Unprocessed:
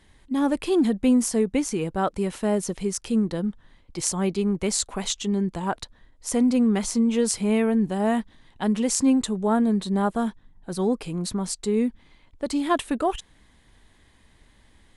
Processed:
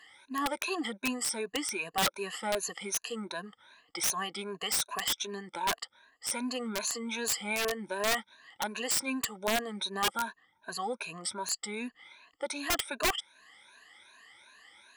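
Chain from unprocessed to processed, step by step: drifting ripple filter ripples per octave 1.5, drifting +2.6 Hz, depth 22 dB; high-pass 1.4 kHz 12 dB/octave; tilt EQ -3 dB/octave; in parallel at +0.5 dB: compression 6:1, threshold -47 dBFS, peak gain reduction 23 dB; on the sum: integer overflow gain 21 dB

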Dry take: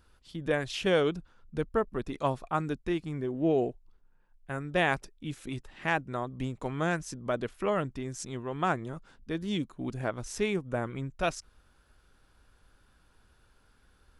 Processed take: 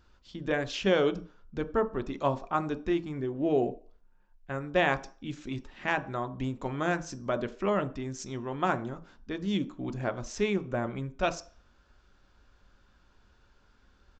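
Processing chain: resampled via 16 kHz; on a send: reverberation RT60 0.40 s, pre-delay 3 ms, DRR 9 dB

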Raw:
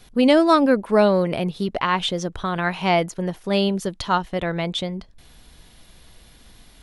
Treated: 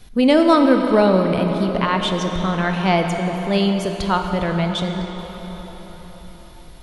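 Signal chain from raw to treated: bass shelf 140 Hz +8 dB; on a send: reverberation RT60 5.1 s, pre-delay 19 ms, DRR 4 dB

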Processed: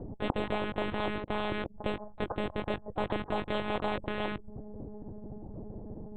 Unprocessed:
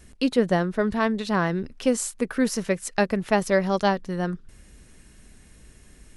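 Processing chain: elliptic low-pass 830 Hz, stop band 70 dB; 1.19–1.74 s: gate -28 dBFS, range -24 dB; in parallel at -9 dB: small samples zeroed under -31.5 dBFS; on the sum: monotone LPC vocoder at 8 kHz 210 Hz; spectrum-flattening compressor 4:1; trim -7 dB

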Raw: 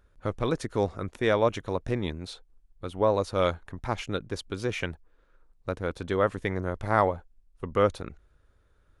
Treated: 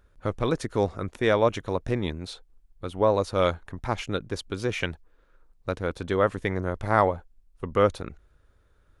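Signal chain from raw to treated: 4.80–5.83 s: dynamic bell 3.9 kHz, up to +5 dB, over -49 dBFS, Q 0.75; trim +2 dB

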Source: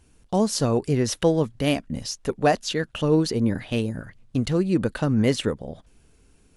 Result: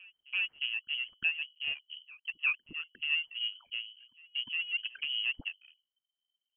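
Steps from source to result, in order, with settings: resonances exaggerated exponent 3; reverb removal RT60 1.2 s; level-controlled noise filter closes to 310 Hz, open at -20.5 dBFS; power-law waveshaper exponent 1.4; hum notches 50/100/150 Hz; on a send: reverse echo 355 ms -23 dB; on the sum: frequency inversion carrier 3.1 kHz; trim -9 dB

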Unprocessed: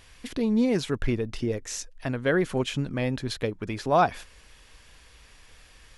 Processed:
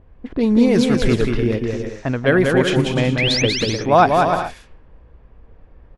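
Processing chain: painted sound rise, 3.18–3.42 s, 1.9–6.6 kHz -28 dBFS; level-controlled noise filter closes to 500 Hz, open at -21.5 dBFS; bouncing-ball echo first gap 190 ms, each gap 0.6×, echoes 5; trim +8 dB

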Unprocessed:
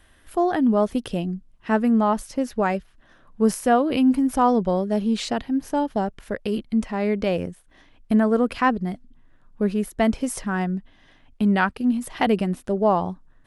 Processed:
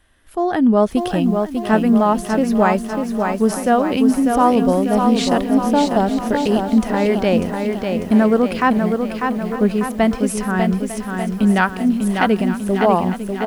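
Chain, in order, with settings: level rider gain up to 12.5 dB; on a send: delay 901 ms -15 dB; on the sum: bit-crushed delay 596 ms, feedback 55%, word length 7-bit, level -5 dB; trim -3 dB

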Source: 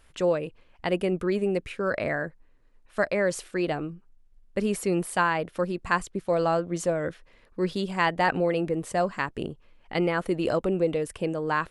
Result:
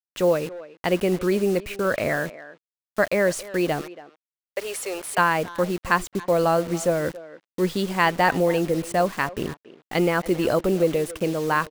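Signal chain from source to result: 3.81–5.18 s: high-pass 500 Hz 24 dB/octave; bit crusher 7-bit; speakerphone echo 280 ms, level -16 dB; trim +4 dB

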